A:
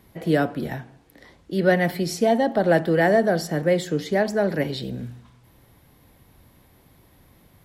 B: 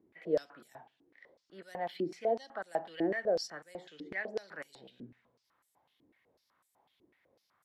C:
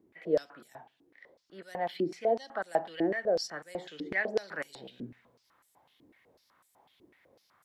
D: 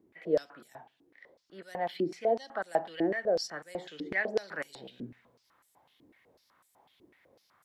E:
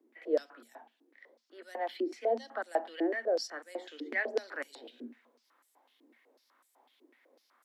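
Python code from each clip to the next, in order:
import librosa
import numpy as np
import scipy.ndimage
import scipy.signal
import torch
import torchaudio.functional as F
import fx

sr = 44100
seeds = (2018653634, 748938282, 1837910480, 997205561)

y1 = fx.filter_held_bandpass(x, sr, hz=8.0, low_hz=330.0, high_hz=8000.0)
y1 = y1 * librosa.db_to_amplitude(-3.5)
y2 = fx.rider(y1, sr, range_db=3, speed_s=0.5)
y2 = y2 * librosa.db_to_amplitude(4.5)
y3 = y2
y4 = scipy.signal.sosfilt(scipy.signal.cheby1(10, 1.0, 230.0, 'highpass', fs=sr, output='sos'), y3)
y4 = y4 * librosa.db_to_amplitude(-1.5)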